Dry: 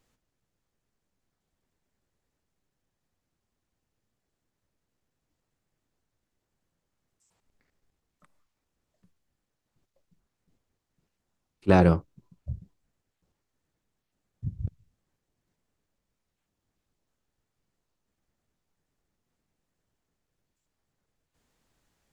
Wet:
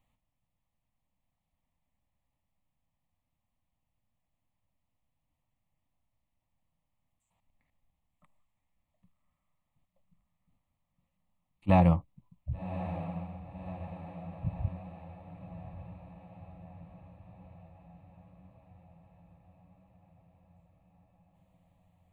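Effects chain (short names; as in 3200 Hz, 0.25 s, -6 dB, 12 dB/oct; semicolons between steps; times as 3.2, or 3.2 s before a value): high shelf 2700 Hz -7 dB; fixed phaser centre 1500 Hz, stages 6; diffused feedback echo 1.129 s, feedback 62%, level -11.5 dB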